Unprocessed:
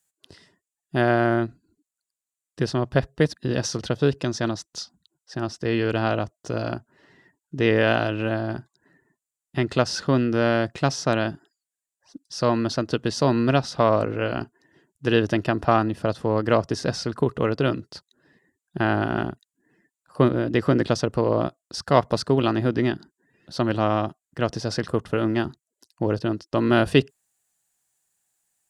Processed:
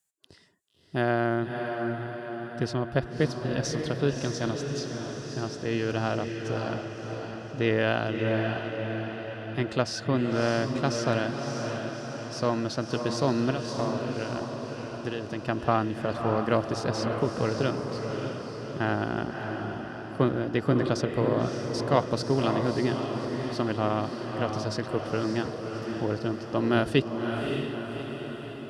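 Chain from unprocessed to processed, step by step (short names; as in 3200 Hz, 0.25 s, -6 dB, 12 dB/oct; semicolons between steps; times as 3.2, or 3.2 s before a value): 13.5–15.49 compressor, threshold -24 dBFS, peak gain reduction 10.5 dB; diffused feedback echo 0.596 s, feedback 58%, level -5 dB; gain -5.5 dB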